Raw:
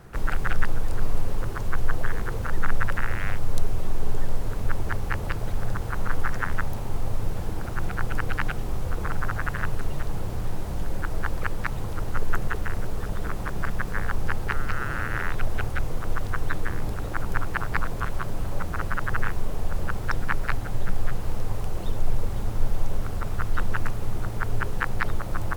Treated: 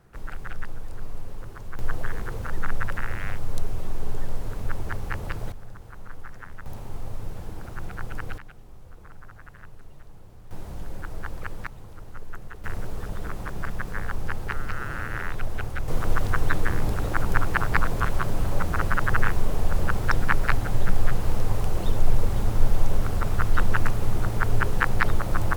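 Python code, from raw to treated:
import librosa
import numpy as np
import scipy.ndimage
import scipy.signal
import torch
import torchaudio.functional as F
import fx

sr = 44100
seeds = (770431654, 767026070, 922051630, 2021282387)

y = fx.gain(x, sr, db=fx.steps((0.0, -10.0), (1.79, -3.0), (5.52, -14.5), (6.66, -6.5), (8.38, -18.5), (10.51, -6.5), (11.67, -13.0), (12.64, -3.0), (15.88, 4.0)))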